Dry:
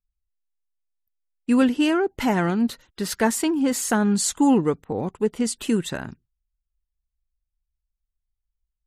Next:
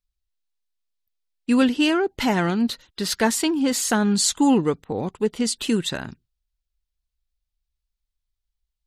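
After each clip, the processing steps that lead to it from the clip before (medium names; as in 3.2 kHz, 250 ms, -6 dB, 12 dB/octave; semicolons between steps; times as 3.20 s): peaking EQ 4 kHz +8 dB 1.2 oct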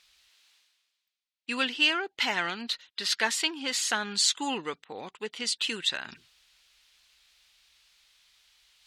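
band-pass filter 2.9 kHz, Q 1; reverse; upward compressor, threshold -41 dBFS; reverse; trim +2.5 dB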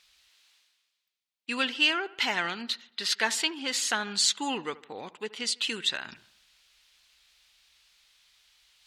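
feedback echo behind a low-pass 75 ms, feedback 51%, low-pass 2.2 kHz, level -19 dB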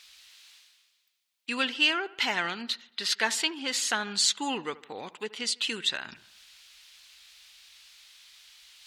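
tape noise reduction on one side only encoder only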